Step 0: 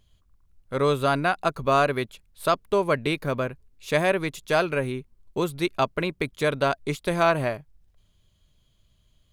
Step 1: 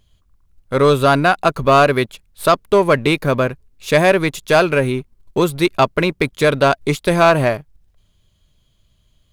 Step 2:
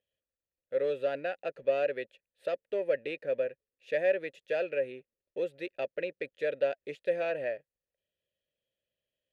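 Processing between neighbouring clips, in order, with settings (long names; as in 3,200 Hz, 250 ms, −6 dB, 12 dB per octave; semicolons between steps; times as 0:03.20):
leveller curve on the samples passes 1; level +6.5 dB
formant filter e; level −8 dB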